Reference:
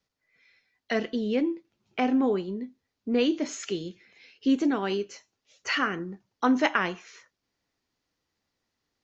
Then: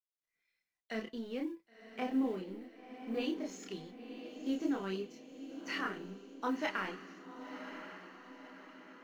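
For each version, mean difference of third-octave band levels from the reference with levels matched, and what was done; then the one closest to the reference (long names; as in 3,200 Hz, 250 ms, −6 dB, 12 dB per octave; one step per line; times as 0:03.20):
6.5 dB: mu-law and A-law mismatch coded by A
multi-voice chorus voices 6, 0.42 Hz, delay 29 ms, depth 3.2 ms
on a send: feedback delay with all-pass diffusion 1,042 ms, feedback 50%, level −10 dB
on the sum: level −8 dB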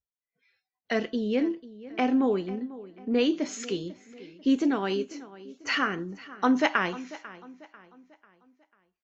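2.0 dB: noise reduction from a noise print of the clip's start 23 dB
repeating echo 494 ms, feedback 42%, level −17 dB
one half of a high-frequency compander decoder only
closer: second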